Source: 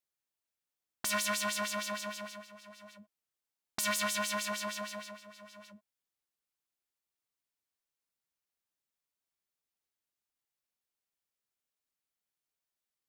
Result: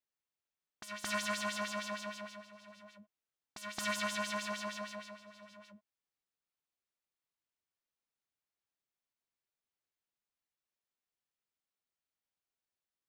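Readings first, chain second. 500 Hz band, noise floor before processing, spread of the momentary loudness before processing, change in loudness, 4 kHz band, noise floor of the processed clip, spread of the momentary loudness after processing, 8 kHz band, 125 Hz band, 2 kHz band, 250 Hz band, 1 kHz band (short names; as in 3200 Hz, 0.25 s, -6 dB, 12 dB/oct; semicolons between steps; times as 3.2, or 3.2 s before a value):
-2.5 dB, under -85 dBFS, 22 LU, -4.5 dB, -4.5 dB, under -85 dBFS, 21 LU, -8.0 dB, -1.5 dB, -2.5 dB, -1.5 dB, -2.5 dB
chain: bell 16000 Hz -14.5 dB 1.1 oct; reverse echo 0.221 s -9 dB; gain -2.5 dB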